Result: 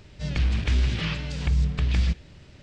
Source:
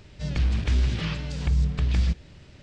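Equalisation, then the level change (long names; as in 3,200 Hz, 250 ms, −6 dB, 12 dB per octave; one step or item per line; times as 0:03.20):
dynamic equaliser 2,500 Hz, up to +4 dB, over −48 dBFS, Q 0.89
0.0 dB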